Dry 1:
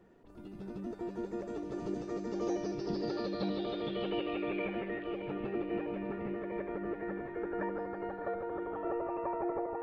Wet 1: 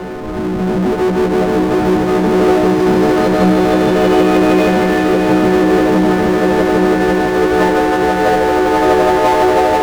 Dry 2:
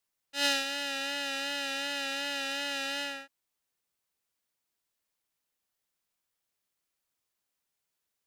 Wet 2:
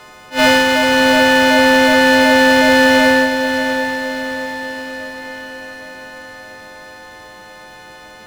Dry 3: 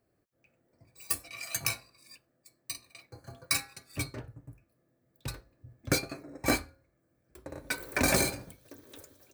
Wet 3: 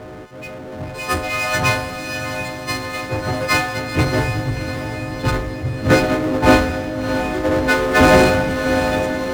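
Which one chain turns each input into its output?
frequency quantiser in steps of 3 st; LPF 1200 Hz 12 dB/oct; power-law curve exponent 0.5; on a send: diffused feedback echo 0.684 s, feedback 55%, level -8 dB; on the sum: attack slew limiter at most 260 dB/s; normalise peaks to -2 dBFS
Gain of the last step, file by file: +20.0, +19.0, +12.5 dB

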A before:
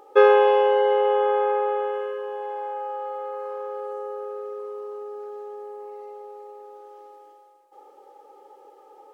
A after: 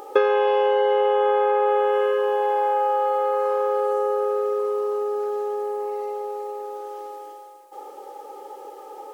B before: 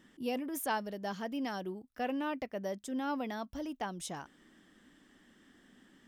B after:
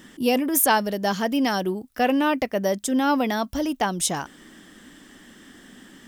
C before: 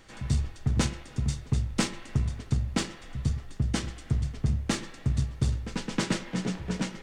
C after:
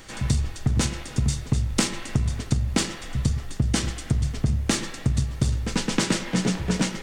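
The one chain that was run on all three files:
compressor 16:1, threshold -26 dBFS; high shelf 5300 Hz +7.5 dB; normalise peaks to -6 dBFS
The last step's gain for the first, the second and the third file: +10.5, +14.0, +8.5 dB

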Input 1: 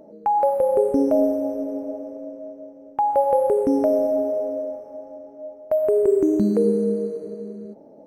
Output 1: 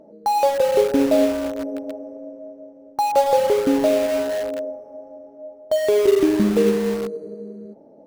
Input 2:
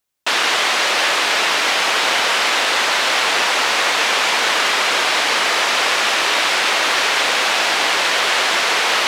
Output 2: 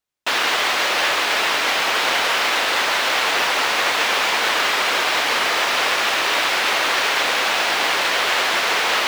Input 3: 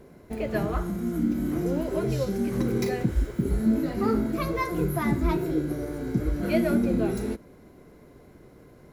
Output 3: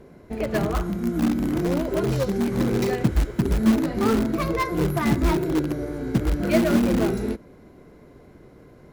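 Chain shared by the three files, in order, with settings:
high shelf 8000 Hz -9 dB; in parallel at -10 dB: wrapped overs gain 20.5 dB; on the sum: upward expander 1.5:1, over -28 dBFS; normalise peaks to -6 dBFS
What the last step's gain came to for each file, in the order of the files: +3.0, -1.0, +5.0 dB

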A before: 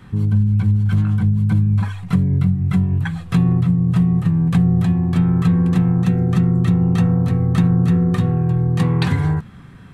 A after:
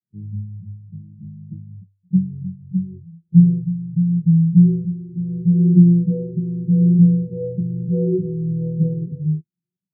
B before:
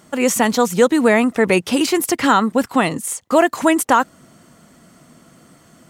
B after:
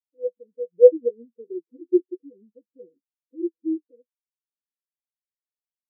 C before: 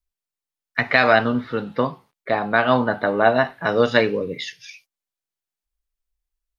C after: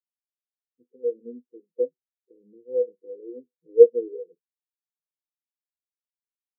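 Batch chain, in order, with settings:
Wiener smoothing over 41 samples; HPF 350 Hz 12 dB/oct; flange 0.39 Hz, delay 9.4 ms, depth 3.7 ms, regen +42%; rippled Chebyshev low-pass 510 Hz, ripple 9 dB; spectral expander 2.5:1; normalise peaks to -1.5 dBFS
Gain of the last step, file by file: +21.5, +12.0, +18.0 dB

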